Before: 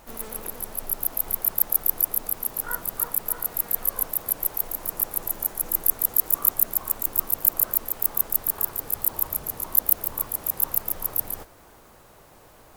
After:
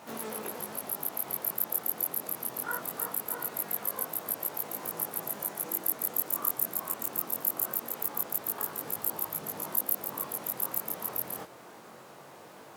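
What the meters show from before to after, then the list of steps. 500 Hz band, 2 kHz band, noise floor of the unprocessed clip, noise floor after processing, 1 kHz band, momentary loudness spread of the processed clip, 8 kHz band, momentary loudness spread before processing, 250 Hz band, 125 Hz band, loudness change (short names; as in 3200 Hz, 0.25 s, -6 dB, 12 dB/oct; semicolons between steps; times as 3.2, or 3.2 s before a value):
0.0 dB, -1.0 dB, -52 dBFS, -50 dBFS, -0.5 dB, 9 LU, -7.0 dB, 8 LU, 0.0 dB, -6.0 dB, -8.0 dB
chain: chorus 0.22 Hz, delay 18.5 ms, depth 4.4 ms; HPF 140 Hz 24 dB/oct; high shelf 9000 Hz -9 dB; in parallel at 0 dB: compressor, threshold -42 dBFS, peak gain reduction 17.5 dB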